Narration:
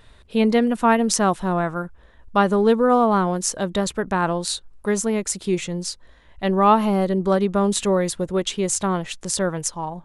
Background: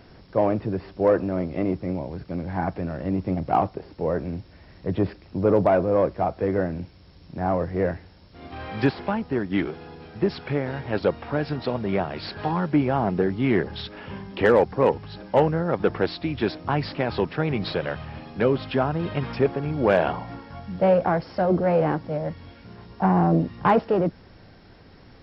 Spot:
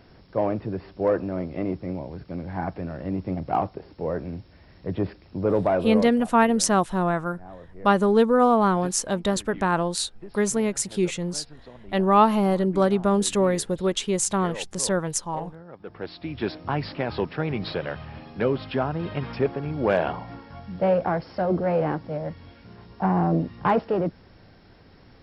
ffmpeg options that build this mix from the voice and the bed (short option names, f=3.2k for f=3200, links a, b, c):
-filter_complex "[0:a]adelay=5500,volume=-1.5dB[a];[1:a]volume=14dB,afade=t=out:st=5.77:d=0.51:silence=0.149624,afade=t=in:st=15.84:d=0.69:silence=0.141254[b];[a][b]amix=inputs=2:normalize=0"